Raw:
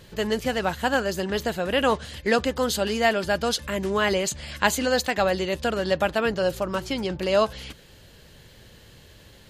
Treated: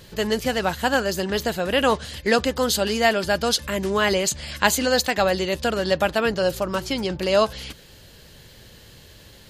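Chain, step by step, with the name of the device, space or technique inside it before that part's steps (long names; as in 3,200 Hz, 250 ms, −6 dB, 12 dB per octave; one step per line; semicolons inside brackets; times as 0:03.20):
presence and air boost (parametric band 4,800 Hz +3 dB 0.77 octaves; high-shelf EQ 9,800 Hz +6 dB)
level +2 dB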